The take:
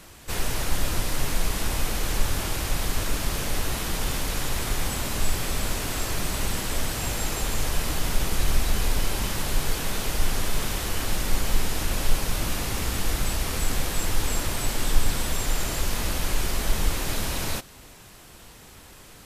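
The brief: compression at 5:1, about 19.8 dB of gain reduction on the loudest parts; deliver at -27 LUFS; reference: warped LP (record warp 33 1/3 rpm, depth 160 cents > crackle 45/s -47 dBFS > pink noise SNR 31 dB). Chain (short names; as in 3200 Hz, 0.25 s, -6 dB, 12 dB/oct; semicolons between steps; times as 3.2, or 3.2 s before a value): compressor 5:1, threshold -35 dBFS; record warp 33 1/3 rpm, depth 160 cents; crackle 45/s -47 dBFS; pink noise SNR 31 dB; gain +13.5 dB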